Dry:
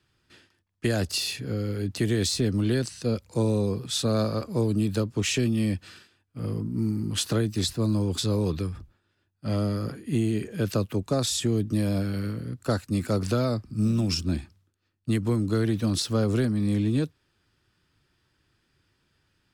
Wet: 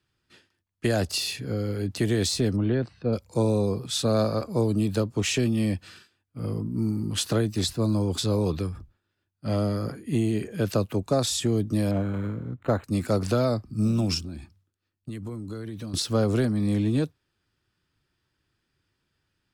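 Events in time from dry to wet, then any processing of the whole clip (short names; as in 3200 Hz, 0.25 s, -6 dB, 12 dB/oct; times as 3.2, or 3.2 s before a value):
2.56–3.13 air absorption 420 m
11.91–12.84 decimation joined by straight lines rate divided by 8×
14.18–15.94 compressor, threshold -32 dBFS
whole clip: spectral noise reduction 6 dB; dynamic EQ 710 Hz, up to +5 dB, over -41 dBFS, Q 1.3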